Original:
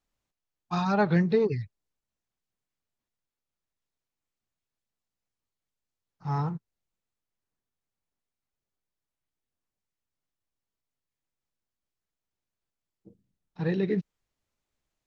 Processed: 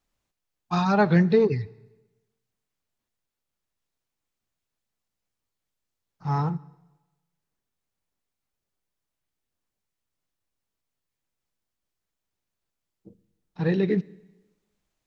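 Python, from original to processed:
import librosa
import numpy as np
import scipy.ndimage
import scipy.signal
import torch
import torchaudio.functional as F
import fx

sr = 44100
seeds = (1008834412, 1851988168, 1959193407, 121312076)

y = fx.rev_plate(x, sr, seeds[0], rt60_s=1.1, hf_ratio=0.95, predelay_ms=0, drr_db=19.5)
y = y * 10.0 ** (4.0 / 20.0)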